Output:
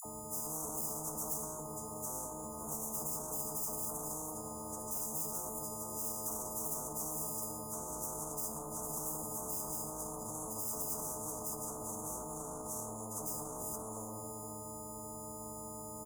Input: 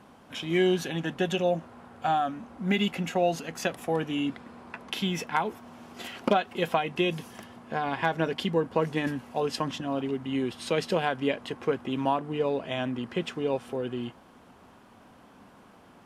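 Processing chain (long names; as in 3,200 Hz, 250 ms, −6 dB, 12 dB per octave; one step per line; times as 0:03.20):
every partial snapped to a pitch grid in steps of 6 semitones
parametric band 2,600 Hz −13.5 dB 0.53 octaves
on a send: single-tap delay 462 ms −18.5 dB
on the sum: tube saturation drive 32 dB, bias 0.45
high-pass filter 54 Hz
all-pass dispersion lows, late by 52 ms, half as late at 940 Hz
convolution reverb RT60 0.60 s, pre-delay 4 ms, DRR 2.5 dB
in parallel at +1 dB: compressor whose output falls as the input rises −37 dBFS
on the sum: brickwall limiter −26 dBFS, peak gain reduction 8.5 dB
Chebyshev band-stop filter 1,000–6,700 Hz, order 5
every bin compressed towards the loudest bin 4 to 1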